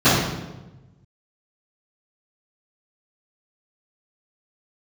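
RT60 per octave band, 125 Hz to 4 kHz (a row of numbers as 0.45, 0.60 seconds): 1.7, 1.3, 1.2, 1.0, 0.85, 0.80 seconds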